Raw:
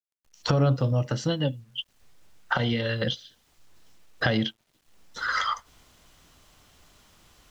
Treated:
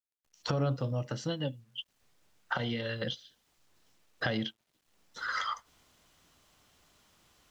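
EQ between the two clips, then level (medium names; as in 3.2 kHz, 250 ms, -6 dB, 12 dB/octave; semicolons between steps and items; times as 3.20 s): bass shelf 69 Hz -9.5 dB; -7.0 dB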